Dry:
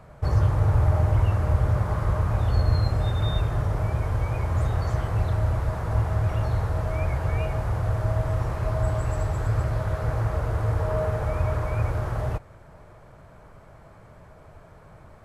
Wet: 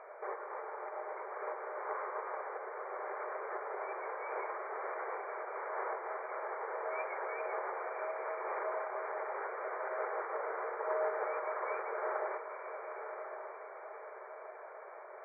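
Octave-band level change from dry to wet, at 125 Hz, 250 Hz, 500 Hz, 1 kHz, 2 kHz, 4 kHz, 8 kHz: under -40 dB, -21.5 dB, -6.0 dB, -4.0 dB, -3.5 dB, under -40 dB, n/a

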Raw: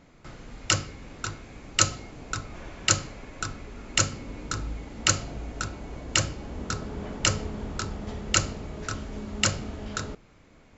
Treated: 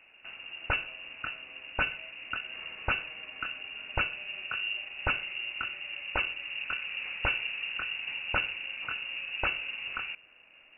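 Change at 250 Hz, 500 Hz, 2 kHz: -15.5, -7.5, +2.5 dB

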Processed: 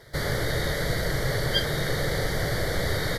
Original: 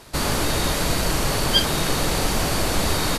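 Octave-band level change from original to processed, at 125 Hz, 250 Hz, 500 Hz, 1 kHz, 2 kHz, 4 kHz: -1.5, -7.0, -2.0, -9.0, -1.5, -7.5 dB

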